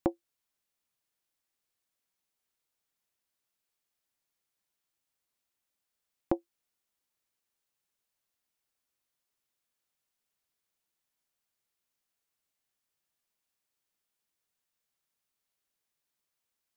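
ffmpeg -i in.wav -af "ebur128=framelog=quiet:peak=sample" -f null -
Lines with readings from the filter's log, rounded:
Integrated loudness:
  I:         -36.4 LUFS
  Threshold: -47.1 LUFS
Loudness range:
  LRA:         0.0 LU
  Threshold: -65.2 LUFS
  LRA low:   -45.1 LUFS
  LRA high:  -45.1 LUFS
Sample peak:
  Peak:      -12.0 dBFS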